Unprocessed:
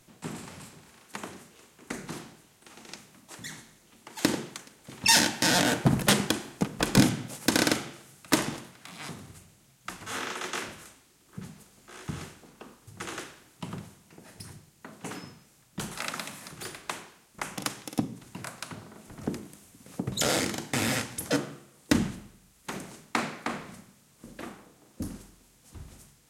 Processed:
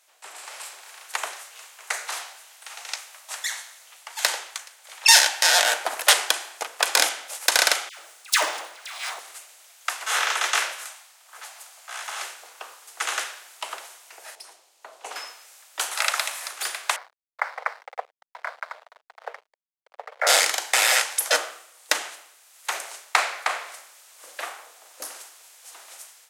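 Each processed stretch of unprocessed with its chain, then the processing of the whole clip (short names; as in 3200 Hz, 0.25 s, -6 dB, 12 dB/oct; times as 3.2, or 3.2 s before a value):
1.33–5.06 HPF 520 Hz + doubler 17 ms -14 dB
7.89–9.2 median filter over 3 samples + dispersion lows, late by 0.104 s, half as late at 1100 Hz
10.85–12.22 resonant low shelf 510 Hz -8 dB, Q 1.5 + mismatched tape noise reduction decoder only
14.35–15.16 LPF 2500 Hz 6 dB/oct + bell 1700 Hz -10 dB 1.4 oct
16.96–20.27 Chebyshev band-pass 460–2200 Hz, order 5 + backlash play -44 dBFS
whole clip: inverse Chebyshev high-pass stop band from 190 Hz, stop band 60 dB; bell 990 Hz -2.5 dB; AGC gain up to 12.5 dB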